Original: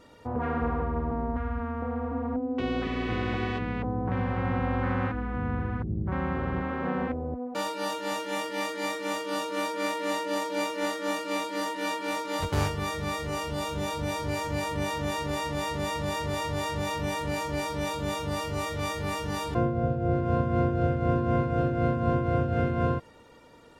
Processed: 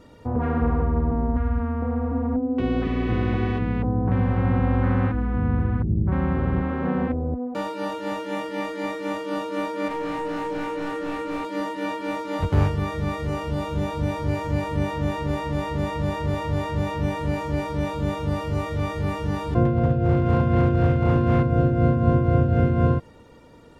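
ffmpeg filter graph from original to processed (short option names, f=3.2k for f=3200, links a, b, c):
-filter_complex "[0:a]asettb=1/sr,asplit=3[a][b][c];[a]atrim=end=9.884[d];[b]atrim=start=9.88:end=11.45,asetpts=PTS-STARTPTS,afade=t=in:d=0.004:c=qsin,afade=t=out:st=1.566:d=0.004:c=qsin,highshelf=f=5.1k:g=-10.5,asoftclip=type=hard:threshold=-31dB,asplit=2[e][f];[f]adelay=28,volume=-3dB[g];[e][g]amix=inputs=2:normalize=0,atrim=end_sample=69237[h];[c]atrim=start=11.446[i];[d][h]acrossfade=d=0.004:c1=hsin:c2=qsin[j];[j][i]acrossfade=d=0.004:c1=qsin:c2=hsin,asettb=1/sr,asplit=3[k][l][m];[k]atrim=end=19.654[n];[l]atrim=start=19.65:end=21.43,asetpts=PTS-STARTPTS,afade=t=in:d=0.004:c=qsin,afade=t=out:st=1.776:d=0.004:c=qsin,equalizer=f=2.9k:t=o:w=2.1:g=8.5,volume=20dB,asoftclip=hard,volume=-20dB[o];[m]atrim=start=21.426[p];[n][o]acrossfade=d=0.004:c1=hsin:c2=qsin[q];[q][p]acrossfade=d=0.004:c1=qsin:c2=hsin,acrossover=split=3100[r][s];[s]acompressor=threshold=-49dB:ratio=4:attack=1:release=60[t];[r][t]amix=inputs=2:normalize=0,lowshelf=f=390:g=9.5"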